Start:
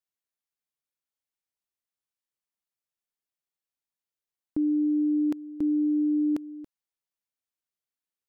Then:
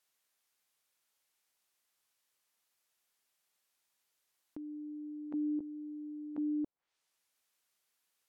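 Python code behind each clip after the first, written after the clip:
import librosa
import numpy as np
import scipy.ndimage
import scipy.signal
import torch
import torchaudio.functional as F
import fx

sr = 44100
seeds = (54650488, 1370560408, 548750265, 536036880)

y = fx.over_compress(x, sr, threshold_db=-37.0, ratio=-1.0)
y = fx.env_lowpass_down(y, sr, base_hz=540.0, full_db=-34.0)
y = fx.low_shelf(y, sr, hz=350.0, db=-11.5)
y = y * 10.0 ** (3.5 / 20.0)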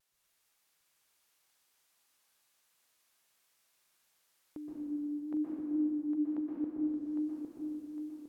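y = fx.vibrato(x, sr, rate_hz=0.97, depth_cents=36.0)
y = fx.echo_feedback(y, sr, ms=807, feedback_pct=41, wet_db=-5.5)
y = fx.rev_plate(y, sr, seeds[0], rt60_s=2.4, hf_ratio=0.85, predelay_ms=110, drr_db=-5.0)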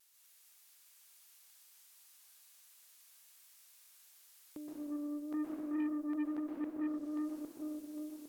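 y = fx.cheby_harmonics(x, sr, harmonics=(8,), levels_db=(-27,), full_scale_db=-24.5)
y = fx.tilt_eq(y, sr, slope=3.0)
y = 10.0 ** (-30.5 / 20.0) * np.tanh(y / 10.0 ** (-30.5 / 20.0))
y = y * 10.0 ** (2.5 / 20.0)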